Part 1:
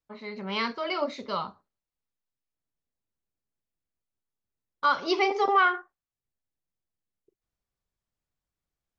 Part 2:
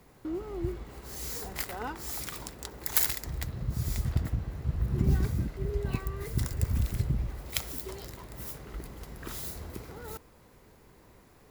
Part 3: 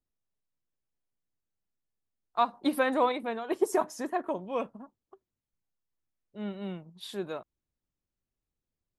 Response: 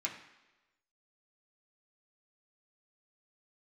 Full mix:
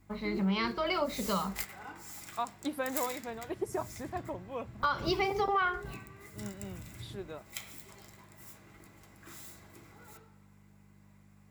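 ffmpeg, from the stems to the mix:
-filter_complex "[0:a]equalizer=frequency=190:width=6.6:gain=14,volume=2dB,asplit=2[link_01][link_02];[1:a]lowshelf=frequency=330:gain=-6,aeval=exprs='val(0)+0.00708*(sin(2*PI*50*n/s)+sin(2*PI*2*50*n/s)/2+sin(2*PI*3*50*n/s)/3+sin(2*PI*4*50*n/s)/4+sin(2*PI*5*50*n/s)/5)':channel_layout=same,volume=-5.5dB,asplit=2[link_03][link_04];[link_04]volume=-4dB[link_05];[2:a]volume=-7.5dB[link_06];[link_02]apad=whole_len=507322[link_07];[link_03][link_07]sidechaingate=range=-33dB:threshold=-48dB:ratio=16:detection=peak[link_08];[3:a]atrim=start_sample=2205[link_09];[link_05][link_09]afir=irnorm=-1:irlink=0[link_10];[link_01][link_08][link_06][link_10]amix=inputs=4:normalize=0,acompressor=threshold=-28dB:ratio=4"

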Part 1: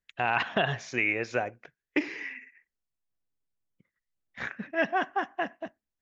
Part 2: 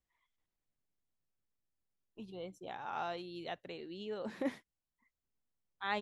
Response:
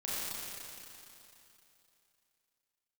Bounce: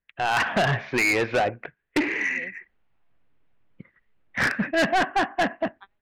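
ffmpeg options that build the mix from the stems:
-filter_complex "[0:a]lowpass=frequency=2700:width=0.5412,lowpass=frequency=2700:width=1.3066,dynaudnorm=framelen=180:gausssize=3:maxgain=13dB,volume=2dB,asplit=2[link_01][link_02];[1:a]lowpass=4100,volume=-3dB[link_03];[link_02]apad=whole_len=265099[link_04];[link_03][link_04]sidechaingate=range=-51dB:threshold=-43dB:ratio=16:detection=peak[link_05];[link_01][link_05]amix=inputs=2:normalize=0,dynaudnorm=framelen=250:gausssize=3:maxgain=6dB,asoftclip=type=tanh:threshold=-17.5dB"

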